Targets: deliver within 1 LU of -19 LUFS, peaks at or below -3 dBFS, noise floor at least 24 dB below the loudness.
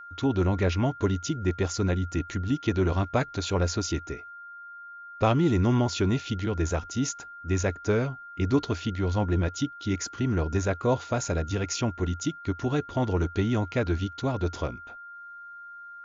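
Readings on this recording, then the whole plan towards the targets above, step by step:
steady tone 1400 Hz; tone level -41 dBFS; loudness -27.5 LUFS; peak -10.5 dBFS; loudness target -19.0 LUFS
-> notch 1400 Hz, Q 30; gain +8.5 dB; limiter -3 dBFS

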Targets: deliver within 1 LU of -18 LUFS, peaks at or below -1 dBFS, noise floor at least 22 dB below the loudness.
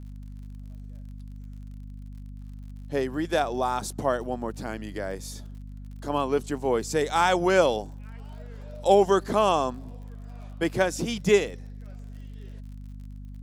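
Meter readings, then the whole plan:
ticks 50/s; hum 50 Hz; harmonics up to 250 Hz; hum level -37 dBFS; loudness -25.5 LUFS; peak -6.5 dBFS; loudness target -18.0 LUFS
-> de-click; de-hum 50 Hz, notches 5; gain +7.5 dB; limiter -1 dBFS

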